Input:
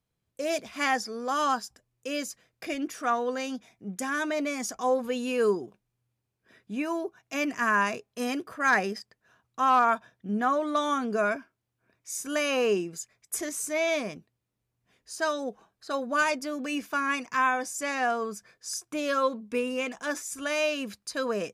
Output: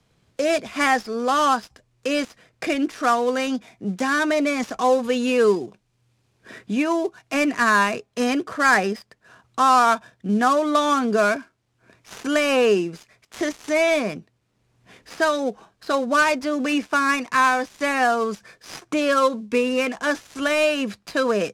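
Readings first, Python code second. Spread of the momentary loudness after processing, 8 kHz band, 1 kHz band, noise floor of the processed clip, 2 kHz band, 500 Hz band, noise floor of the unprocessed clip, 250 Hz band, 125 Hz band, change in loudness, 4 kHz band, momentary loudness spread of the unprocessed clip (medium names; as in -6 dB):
11 LU, +2.0 dB, +7.0 dB, -68 dBFS, +7.0 dB, +8.0 dB, -82 dBFS, +9.0 dB, +8.5 dB, +7.5 dB, +7.5 dB, 12 LU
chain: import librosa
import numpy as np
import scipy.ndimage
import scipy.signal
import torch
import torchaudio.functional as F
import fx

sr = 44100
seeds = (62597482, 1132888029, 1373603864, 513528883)

y = fx.dead_time(x, sr, dead_ms=0.064)
y = scipy.signal.sosfilt(scipy.signal.butter(2, 8100.0, 'lowpass', fs=sr, output='sos'), y)
y = fx.band_squash(y, sr, depth_pct=40)
y = F.gain(torch.from_numpy(y), 8.0).numpy()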